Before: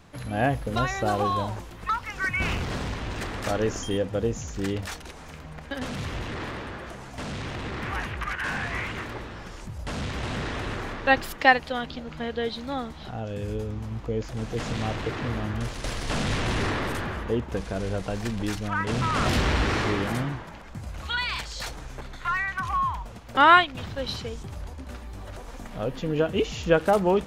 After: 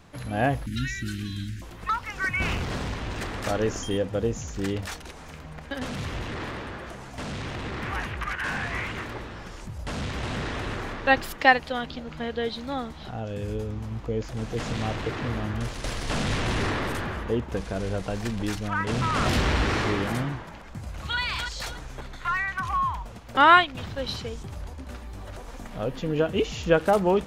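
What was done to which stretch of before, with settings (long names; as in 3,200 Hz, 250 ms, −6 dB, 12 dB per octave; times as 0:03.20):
0:00.66–0:01.62: elliptic band-stop filter 290–1,700 Hz
0:20.75–0:21.19: delay throw 290 ms, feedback 30%, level −5.5 dB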